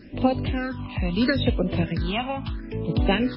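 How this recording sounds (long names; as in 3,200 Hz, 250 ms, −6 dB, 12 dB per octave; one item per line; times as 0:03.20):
sample-and-hold tremolo 3.8 Hz, depth 55%
a quantiser's noise floor 10 bits, dither none
phaser sweep stages 6, 0.76 Hz, lowest notch 410–1,700 Hz
MP3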